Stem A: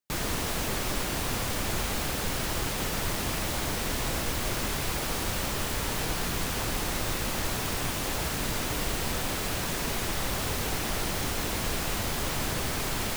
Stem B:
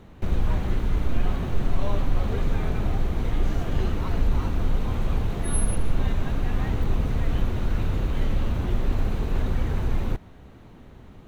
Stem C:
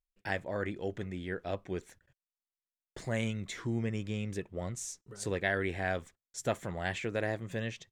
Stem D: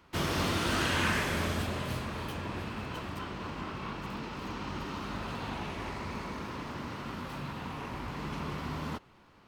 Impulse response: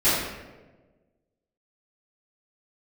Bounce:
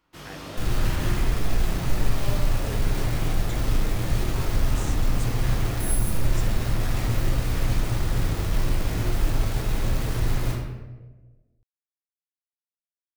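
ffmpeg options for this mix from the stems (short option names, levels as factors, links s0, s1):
-filter_complex "[1:a]equalizer=f=120:w=4.6:g=14.5,acrusher=bits=4:mix=0:aa=0.000001,adelay=350,volume=0.299,asplit=2[s0][s1];[s1]volume=0.251[s2];[2:a]acompressor=threshold=0.0141:ratio=6,volume=0.668[s3];[3:a]volume=0.224,asplit=2[s4][s5];[s5]volume=0.15[s6];[4:a]atrim=start_sample=2205[s7];[s2][s6]amix=inputs=2:normalize=0[s8];[s8][s7]afir=irnorm=-1:irlink=0[s9];[s0][s3][s4][s9]amix=inputs=4:normalize=0,highshelf=f=5000:g=5"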